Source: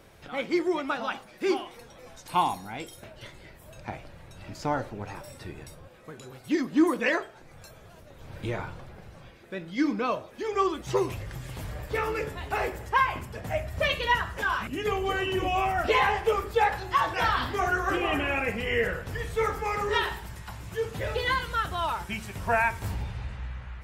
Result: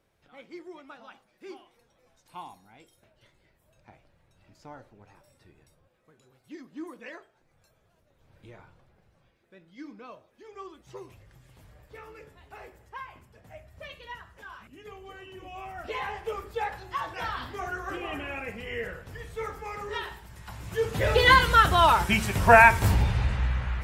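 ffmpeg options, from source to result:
-af "volume=10dB,afade=t=in:st=15.41:d=1:silence=0.334965,afade=t=in:st=20.29:d=0.59:silence=0.266073,afade=t=in:st=20.88:d=0.47:silence=0.473151"

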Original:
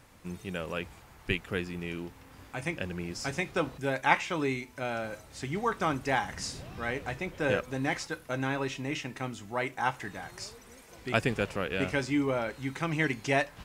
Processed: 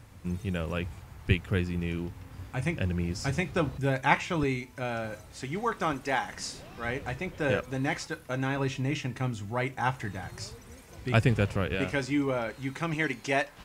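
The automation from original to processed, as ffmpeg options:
-af "asetnsamples=n=441:p=0,asendcmd='4.43 equalizer g 6.5;5.32 equalizer g -1;5.93 equalizer g -7;6.84 equalizer g 4.5;8.57 equalizer g 12.5;11.75 equalizer g 1.5;12.94 equalizer g -6',equalizer=f=90:t=o:w=1.9:g=13"

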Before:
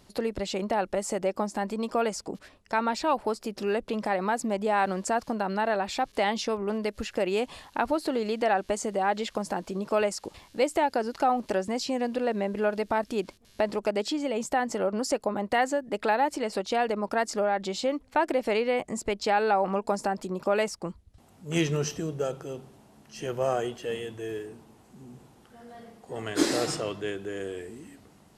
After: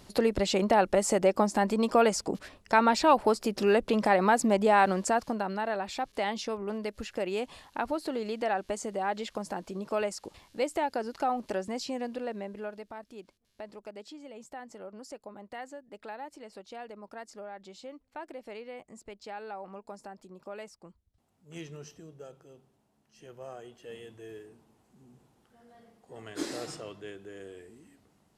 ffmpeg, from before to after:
-af "volume=10.5dB,afade=t=out:st=4.57:d=1.02:silence=0.354813,afade=t=out:st=11.83:d=1.1:silence=0.251189,afade=t=in:st=23.64:d=0.41:silence=0.473151"

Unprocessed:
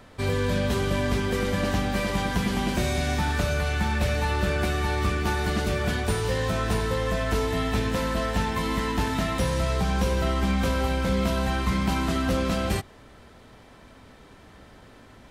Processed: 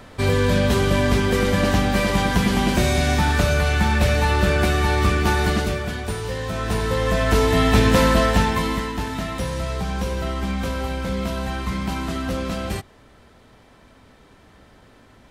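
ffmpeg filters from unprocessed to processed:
-af "volume=19dB,afade=t=out:st=5.45:d=0.41:silence=0.398107,afade=t=in:st=6.47:d=1.55:silence=0.237137,afade=t=out:st=8.02:d=0.89:silence=0.251189"

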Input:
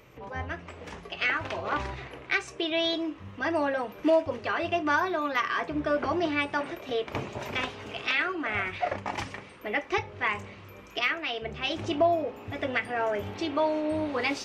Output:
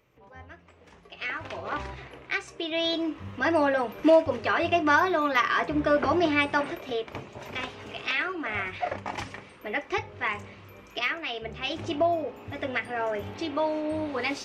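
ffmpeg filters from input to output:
-af "volume=10.5dB,afade=t=in:st=0.93:d=0.68:silence=0.334965,afade=t=in:st=2.67:d=0.55:silence=0.473151,afade=t=out:st=6.58:d=0.66:silence=0.266073,afade=t=in:st=7.24:d=0.58:silence=0.473151"

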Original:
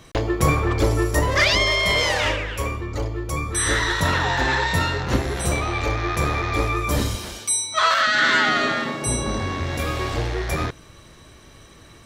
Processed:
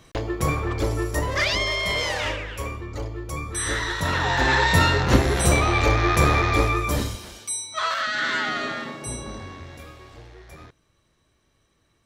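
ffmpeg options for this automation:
-af "volume=4dB,afade=t=in:st=4.01:d=0.84:silence=0.354813,afade=t=out:st=6.36:d=0.82:silence=0.281838,afade=t=out:st=8.83:d=1.16:silence=0.223872"

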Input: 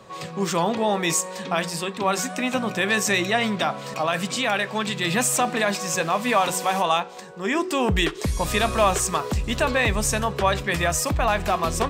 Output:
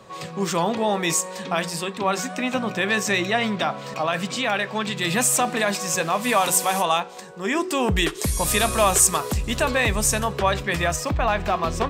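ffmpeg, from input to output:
-af "asetnsamples=n=441:p=0,asendcmd='2 equalizer g -5.5;4.97 equalizer g 4;6.24 equalizer g 12;6.85 equalizer g 4.5;8.07 equalizer g 13.5;9.33 equalizer g 6;10.36 equalizer g -1.5;10.96 equalizer g -11.5',equalizer=f=11k:t=o:w=1.2:g=1"

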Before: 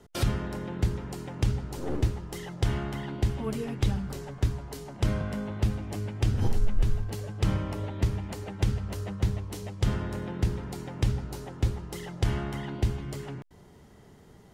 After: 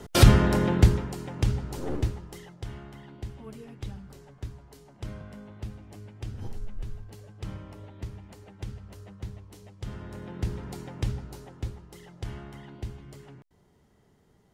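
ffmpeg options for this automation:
-af "volume=21.5dB,afade=t=out:st=0.66:d=0.47:silence=0.298538,afade=t=out:st=1.78:d=0.81:silence=0.237137,afade=t=in:st=9.87:d=0.84:silence=0.316228,afade=t=out:st=10.71:d=1.15:silence=0.375837"

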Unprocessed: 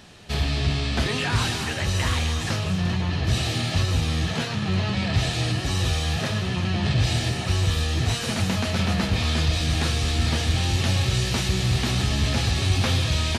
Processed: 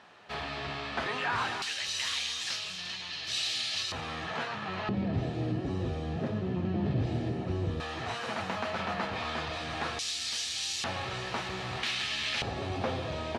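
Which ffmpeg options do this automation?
-af "asetnsamples=n=441:p=0,asendcmd='1.62 bandpass f 4300;3.92 bandpass f 1100;4.89 bandpass f 320;7.8 bandpass f 1000;9.99 bandpass f 5900;10.84 bandpass f 1000;11.83 bandpass f 2500;12.42 bandpass f 600',bandpass=f=1.1k:t=q:w=1.1:csg=0"

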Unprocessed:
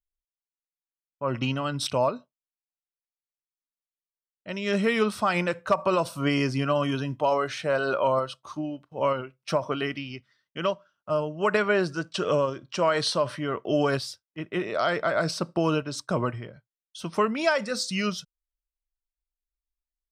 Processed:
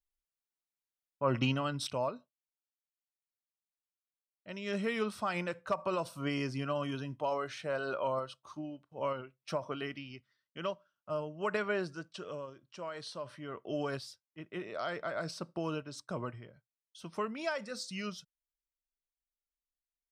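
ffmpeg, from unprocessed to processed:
-af "volume=4.5dB,afade=t=out:st=1.38:d=0.53:silence=0.398107,afade=t=out:st=11.73:d=0.59:silence=0.375837,afade=t=in:st=13.09:d=0.6:silence=0.473151"

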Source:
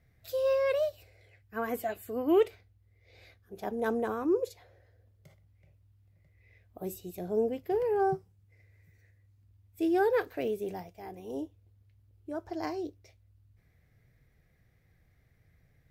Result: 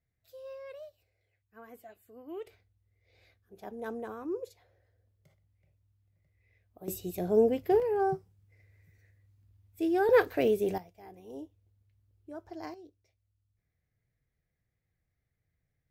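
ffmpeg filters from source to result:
-af "asetnsamples=n=441:p=0,asendcmd='2.47 volume volume -8dB;6.88 volume volume 5dB;7.8 volume volume -1dB;10.09 volume volume 6dB;10.78 volume volume -6.5dB;12.74 volume volume -15.5dB',volume=-17.5dB"

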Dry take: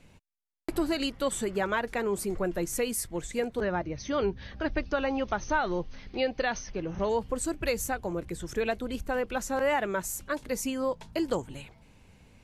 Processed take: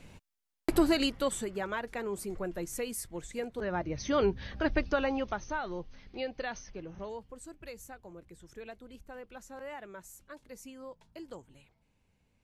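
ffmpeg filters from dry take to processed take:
-af "volume=11.5dB,afade=t=out:st=0.75:d=0.75:silence=0.298538,afade=t=in:st=3.61:d=0.4:silence=0.421697,afade=t=out:st=4.81:d=0.69:silence=0.354813,afade=t=out:st=6.68:d=0.59:silence=0.375837"

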